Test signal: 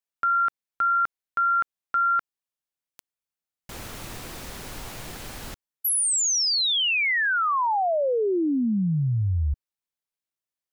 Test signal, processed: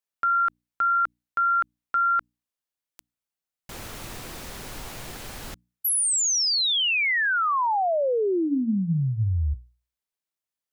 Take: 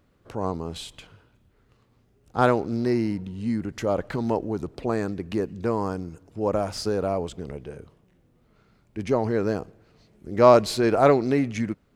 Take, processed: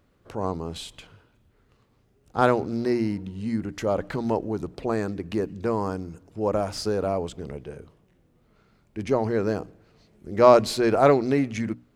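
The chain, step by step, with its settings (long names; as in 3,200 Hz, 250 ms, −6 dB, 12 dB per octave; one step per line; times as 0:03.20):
mains-hum notches 60/120/180/240/300 Hz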